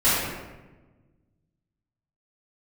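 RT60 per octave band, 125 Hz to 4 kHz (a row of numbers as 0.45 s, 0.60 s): 2.1 s, 1.8 s, 1.3 s, 1.1 s, 1.0 s, 0.75 s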